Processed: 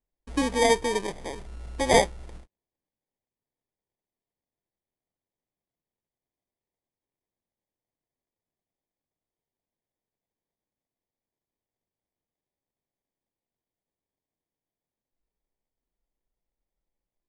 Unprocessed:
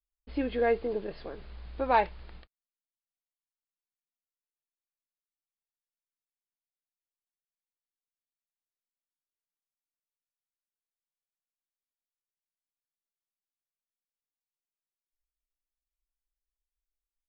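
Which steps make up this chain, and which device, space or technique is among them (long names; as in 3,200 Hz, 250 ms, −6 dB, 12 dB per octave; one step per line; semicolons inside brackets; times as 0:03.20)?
crushed at another speed (tape speed factor 2×; decimation without filtering 16×; tape speed factor 0.5×)
level +5 dB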